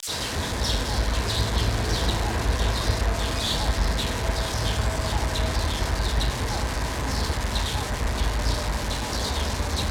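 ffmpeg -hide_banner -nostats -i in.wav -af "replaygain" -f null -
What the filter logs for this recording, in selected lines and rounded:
track_gain = +8.2 dB
track_peak = 0.214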